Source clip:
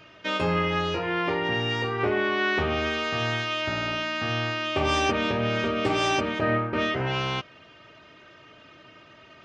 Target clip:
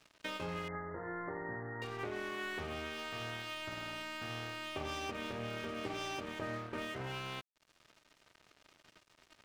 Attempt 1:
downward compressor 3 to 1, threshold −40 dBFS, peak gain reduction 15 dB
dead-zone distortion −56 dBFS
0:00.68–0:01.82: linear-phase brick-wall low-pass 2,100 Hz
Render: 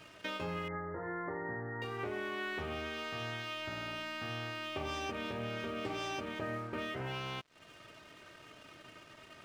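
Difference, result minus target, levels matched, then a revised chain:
dead-zone distortion: distortion −9 dB
downward compressor 3 to 1, threshold −40 dBFS, peak gain reduction 15 dB
dead-zone distortion −46.5 dBFS
0:00.68–0:01.82: linear-phase brick-wall low-pass 2,100 Hz

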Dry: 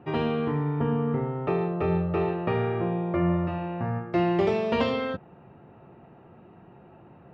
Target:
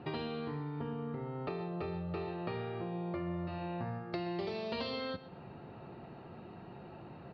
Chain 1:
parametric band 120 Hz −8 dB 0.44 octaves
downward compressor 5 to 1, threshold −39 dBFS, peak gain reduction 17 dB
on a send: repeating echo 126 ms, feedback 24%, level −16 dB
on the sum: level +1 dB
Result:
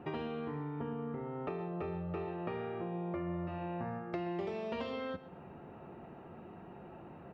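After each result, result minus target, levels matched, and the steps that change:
4,000 Hz band −8.0 dB; 125 Hz band −2.0 dB
add after downward compressor: low-pass with resonance 4,400 Hz, resonance Q 8.8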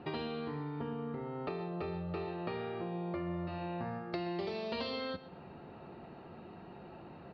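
125 Hz band −2.5 dB
remove: parametric band 120 Hz −8 dB 0.44 octaves

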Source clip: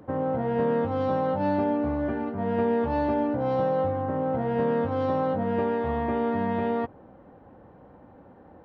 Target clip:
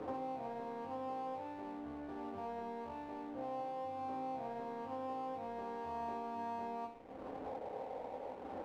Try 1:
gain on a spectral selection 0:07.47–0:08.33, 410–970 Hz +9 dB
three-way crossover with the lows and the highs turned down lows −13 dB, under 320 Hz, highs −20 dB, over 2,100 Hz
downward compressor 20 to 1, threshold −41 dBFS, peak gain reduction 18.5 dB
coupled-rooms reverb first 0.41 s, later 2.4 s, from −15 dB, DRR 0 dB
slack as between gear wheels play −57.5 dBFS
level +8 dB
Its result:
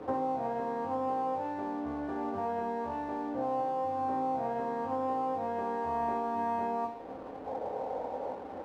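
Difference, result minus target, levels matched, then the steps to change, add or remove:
downward compressor: peak gain reduction −9.5 dB
change: downward compressor 20 to 1, threshold −51 dBFS, peak gain reduction 28 dB

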